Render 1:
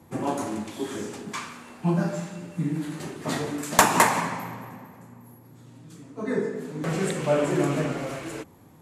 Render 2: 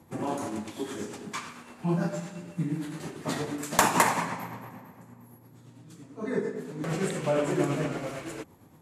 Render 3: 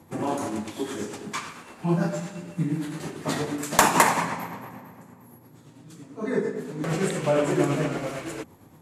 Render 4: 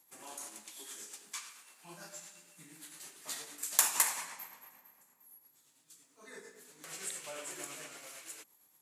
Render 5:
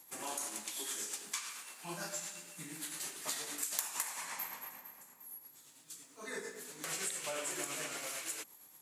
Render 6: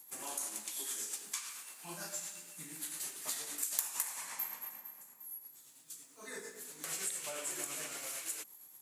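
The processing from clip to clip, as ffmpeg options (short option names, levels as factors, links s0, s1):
-af "tremolo=f=8.8:d=0.38,volume=0.841"
-af "bandreject=f=60:t=h:w=6,bandreject=f=120:t=h:w=6,bandreject=f=180:t=h:w=6,bandreject=f=240:t=h:w=6,volume=1.58"
-af "aderivative,volume=0.708"
-af "acompressor=threshold=0.00631:ratio=6,volume=2.66"
-af "highshelf=f=7900:g=9.5,volume=0.631"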